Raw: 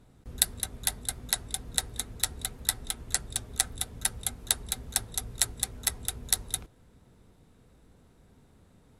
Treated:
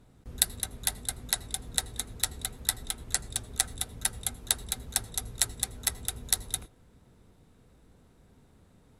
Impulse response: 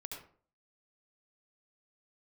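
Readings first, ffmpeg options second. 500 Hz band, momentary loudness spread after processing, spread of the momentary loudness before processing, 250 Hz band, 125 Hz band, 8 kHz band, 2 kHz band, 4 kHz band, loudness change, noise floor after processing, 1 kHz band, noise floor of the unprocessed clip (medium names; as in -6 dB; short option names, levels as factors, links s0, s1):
-0.5 dB, 7 LU, 7 LU, -0.5 dB, -0.5 dB, -0.5 dB, -0.5 dB, -0.5 dB, -0.5 dB, -61 dBFS, -0.5 dB, -60 dBFS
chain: -filter_complex "[0:a]asplit=2[s0][s1];[1:a]atrim=start_sample=2205,afade=t=out:st=0.16:d=0.01,atrim=end_sample=7497,asetrate=37044,aresample=44100[s2];[s1][s2]afir=irnorm=-1:irlink=0,volume=0.126[s3];[s0][s3]amix=inputs=2:normalize=0,volume=0.891"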